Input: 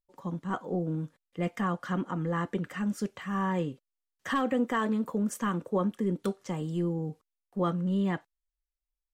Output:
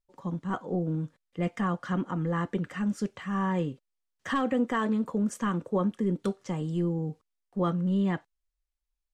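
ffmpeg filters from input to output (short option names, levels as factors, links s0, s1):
-af "lowpass=9200,lowshelf=f=150:g=5"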